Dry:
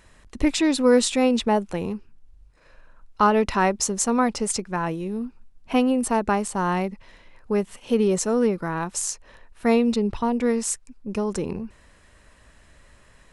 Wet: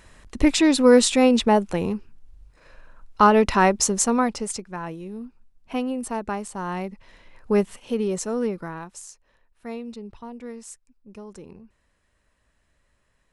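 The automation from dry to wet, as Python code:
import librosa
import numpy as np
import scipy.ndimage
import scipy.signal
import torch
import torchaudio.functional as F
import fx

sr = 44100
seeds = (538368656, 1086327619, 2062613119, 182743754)

y = fx.gain(x, sr, db=fx.line((3.96, 3.0), (4.65, -6.5), (6.66, -6.5), (7.6, 3.5), (7.94, -4.5), (8.62, -4.5), (9.07, -15.0)))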